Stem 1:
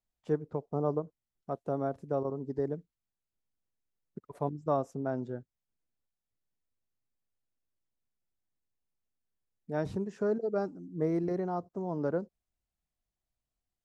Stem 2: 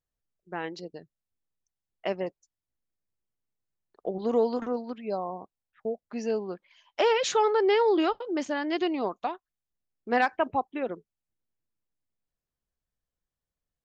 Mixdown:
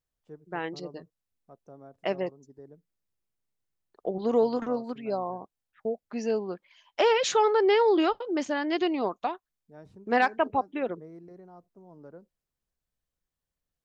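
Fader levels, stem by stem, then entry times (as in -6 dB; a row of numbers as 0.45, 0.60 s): -16.5, +1.0 dB; 0.00, 0.00 s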